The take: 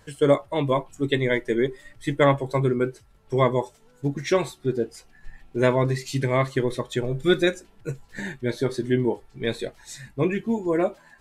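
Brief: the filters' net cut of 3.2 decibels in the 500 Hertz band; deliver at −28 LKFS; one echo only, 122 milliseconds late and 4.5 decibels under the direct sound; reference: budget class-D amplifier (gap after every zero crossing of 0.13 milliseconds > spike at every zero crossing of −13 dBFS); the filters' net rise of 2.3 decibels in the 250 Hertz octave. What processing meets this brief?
parametric band 250 Hz +5.5 dB
parametric band 500 Hz −6.5 dB
single-tap delay 122 ms −4.5 dB
gap after every zero crossing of 0.13 ms
spike at every zero crossing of −13 dBFS
level −5 dB

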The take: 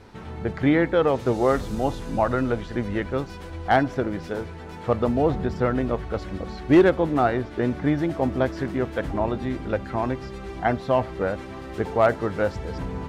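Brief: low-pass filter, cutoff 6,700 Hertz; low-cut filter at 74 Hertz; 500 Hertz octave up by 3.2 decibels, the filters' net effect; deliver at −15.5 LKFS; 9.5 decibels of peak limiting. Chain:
high-pass filter 74 Hz
low-pass filter 6,700 Hz
parametric band 500 Hz +4 dB
level +11 dB
brickwall limiter −3.5 dBFS

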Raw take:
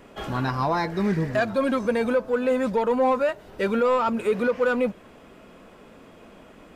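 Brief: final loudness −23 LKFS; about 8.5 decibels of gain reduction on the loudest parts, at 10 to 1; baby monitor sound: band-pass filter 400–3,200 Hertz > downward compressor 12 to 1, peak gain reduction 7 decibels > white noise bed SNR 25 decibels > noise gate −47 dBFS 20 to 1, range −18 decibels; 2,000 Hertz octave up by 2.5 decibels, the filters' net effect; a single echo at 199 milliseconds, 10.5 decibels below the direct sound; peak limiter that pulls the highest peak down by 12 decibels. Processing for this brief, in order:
parametric band 2,000 Hz +4 dB
downward compressor 10 to 1, threshold −26 dBFS
brickwall limiter −29.5 dBFS
band-pass filter 400–3,200 Hz
single-tap delay 199 ms −10.5 dB
downward compressor 12 to 1, threshold −38 dBFS
white noise bed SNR 25 dB
noise gate −47 dBFS 20 to 1, range −18 dB
level +20 dB

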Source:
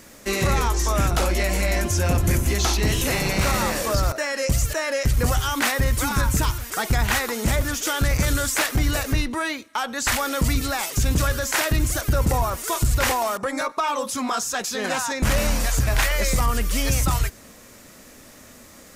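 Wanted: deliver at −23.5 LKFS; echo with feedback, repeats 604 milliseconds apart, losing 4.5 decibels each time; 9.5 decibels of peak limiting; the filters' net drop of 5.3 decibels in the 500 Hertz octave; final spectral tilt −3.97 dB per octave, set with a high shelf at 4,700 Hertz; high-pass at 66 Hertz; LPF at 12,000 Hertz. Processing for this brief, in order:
high-pass filter 66 Hz
low-pass filter 12,000 Hz
parametric band 500 Hz −6.5 dB
high-shelf EQ 4,700 Hz −7 dB
brickwall limiter −20 dBFS
repeating echo 604 ms, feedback 60%, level −4.5 dB
level +4 dB

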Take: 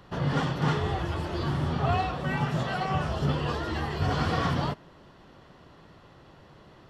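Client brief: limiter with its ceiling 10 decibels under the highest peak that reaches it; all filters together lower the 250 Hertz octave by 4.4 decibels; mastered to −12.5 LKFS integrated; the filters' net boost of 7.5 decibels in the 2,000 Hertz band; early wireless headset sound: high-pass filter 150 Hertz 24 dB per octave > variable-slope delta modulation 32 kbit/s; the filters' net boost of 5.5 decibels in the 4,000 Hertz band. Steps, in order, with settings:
parametric band 250 Hz −5.5 dB
parametric band 2,000 Hz +9 dB
parametric band 4,000 Hz +3.5 dB
brickwall limiter −23 dBFS
high-pass filter 150 Hz 24 dB per octave
variable-slope delta modulation 32 kbit/s
level +20 dB

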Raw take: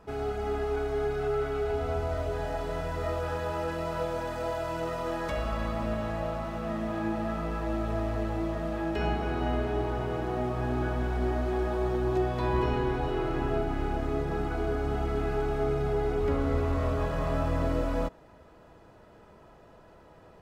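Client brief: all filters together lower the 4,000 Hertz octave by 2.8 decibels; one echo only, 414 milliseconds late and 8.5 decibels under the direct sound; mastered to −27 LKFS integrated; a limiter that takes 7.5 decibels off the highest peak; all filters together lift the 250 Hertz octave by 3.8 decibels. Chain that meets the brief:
parametric band 250 Hz +5 dB
parametric band 4,000 Hz −4 dB
brickwall limiter −21.5 dBFS
single-tap delay 414 ms −8.5 dB
level +3 dB

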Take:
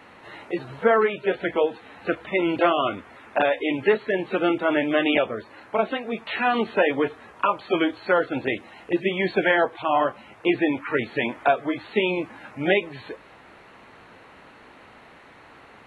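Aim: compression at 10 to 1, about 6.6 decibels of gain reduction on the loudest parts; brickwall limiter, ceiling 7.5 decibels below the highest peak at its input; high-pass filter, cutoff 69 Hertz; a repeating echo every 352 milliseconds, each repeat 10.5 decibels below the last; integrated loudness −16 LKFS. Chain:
high-pass filter 69 Hz
downward compressor 10 to 1, threshold −21 dBFS
brickwall limiter −17.5 dBFS
repeating echo 352 ms, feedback 30%, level −10.5 dB
level +13.5 dB

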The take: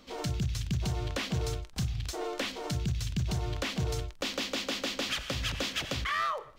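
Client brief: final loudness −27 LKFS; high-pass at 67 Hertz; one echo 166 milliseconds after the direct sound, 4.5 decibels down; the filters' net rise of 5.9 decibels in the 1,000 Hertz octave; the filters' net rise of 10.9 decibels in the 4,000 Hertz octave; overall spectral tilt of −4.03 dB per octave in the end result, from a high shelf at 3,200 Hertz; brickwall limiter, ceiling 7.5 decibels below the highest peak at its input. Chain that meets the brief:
high-pass filter 67 Hz
parametric band 1,000 Hz +6 dB
high-shelf EQ 3,200 Hz +7.5 dB
parametric band 4,000 Hz +8 dB
brickwall limiter −18.5 dBFS
single-tap delay 166 ms −4.5 dB
level +0.5 dB

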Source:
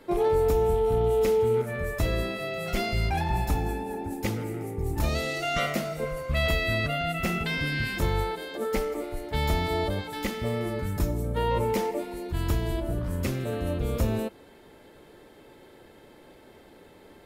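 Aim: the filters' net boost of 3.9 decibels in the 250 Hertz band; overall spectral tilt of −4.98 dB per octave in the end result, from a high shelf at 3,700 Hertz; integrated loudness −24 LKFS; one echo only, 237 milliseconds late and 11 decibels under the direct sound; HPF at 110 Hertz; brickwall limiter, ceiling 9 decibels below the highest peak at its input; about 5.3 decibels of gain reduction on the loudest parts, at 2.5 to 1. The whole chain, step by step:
high-pass filter 110 Hz
parametric band 250 Hz +5.5 dB
high-shelf EQ 3,700 Hz +7 dB
downward compressor 2.5 to 1, threshold −27 dBFS
brickwall limiter −24 dBFS
single-tap delay 237 ms −11 dB
level +8.5 dB

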